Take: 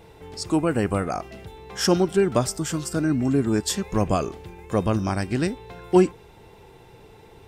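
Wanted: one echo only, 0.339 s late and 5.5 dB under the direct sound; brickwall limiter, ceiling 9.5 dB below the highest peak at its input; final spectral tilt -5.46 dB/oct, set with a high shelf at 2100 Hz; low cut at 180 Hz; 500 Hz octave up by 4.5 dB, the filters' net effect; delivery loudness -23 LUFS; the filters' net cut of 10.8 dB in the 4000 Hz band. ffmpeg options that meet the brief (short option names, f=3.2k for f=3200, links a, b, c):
-af "highpass=180,equalizer=f=500:t=o:g=7,highshelf=f=2.1k:g=-6,equalizer=f=4k:t=o:g=-9,alimiter=limit=-11.5dB:level=0:latency=1,aecho=1:1:339:0.531,volume=1dB"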